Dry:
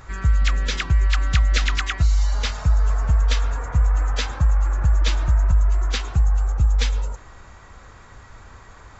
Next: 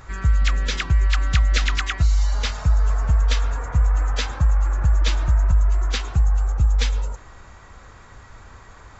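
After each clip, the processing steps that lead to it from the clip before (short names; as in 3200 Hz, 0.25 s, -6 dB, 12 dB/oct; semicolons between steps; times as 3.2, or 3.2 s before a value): nothing audible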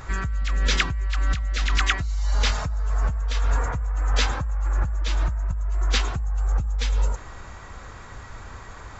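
negative-ratio compressor -22 dBFS, ratio -1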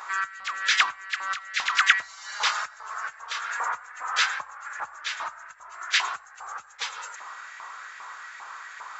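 LFO high-pass saw up 2.5 Hz 950–1900 Hz; on a send at -23 dB: reverb RT60 0.30 s, pre-delay 76 ms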